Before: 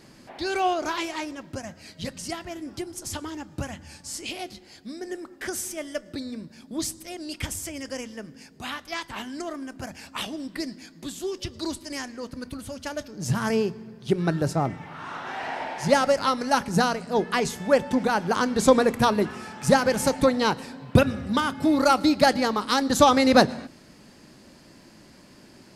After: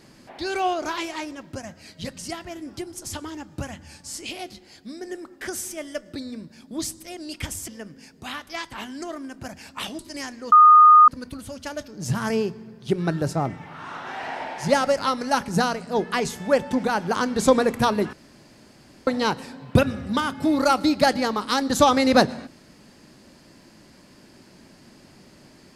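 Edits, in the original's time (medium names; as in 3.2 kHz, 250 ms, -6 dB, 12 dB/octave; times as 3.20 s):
7.68–8.06 s: delete
10.37–11.75 s: delete
12.28 s: add tone 1.23 kHz -7.5 dBFS 0.56 s
19.33–20.27 s: room tone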